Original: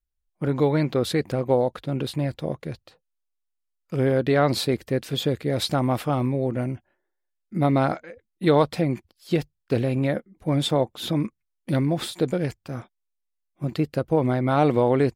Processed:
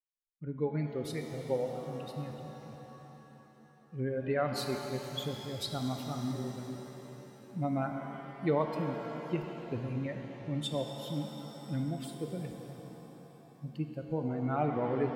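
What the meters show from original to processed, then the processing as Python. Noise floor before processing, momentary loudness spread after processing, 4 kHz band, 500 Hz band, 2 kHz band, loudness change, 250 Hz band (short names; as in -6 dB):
-79 dBFS, 16 LU, -11.0 dB, -12.0 dB, -11.5 dB, -12.0 dB, -11.5 dB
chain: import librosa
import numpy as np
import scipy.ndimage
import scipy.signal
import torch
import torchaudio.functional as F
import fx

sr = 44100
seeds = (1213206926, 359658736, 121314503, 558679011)

y = fx.bin_expand(x, sr, power=2.0)
y = fx.rev_shimmer(y, sr, seeds[0], rt60_s=3.8, semitones=7, shimmer_db=-8, drr_db=3.5)
y = y * 10.0 ** (-8.5 / 20.0)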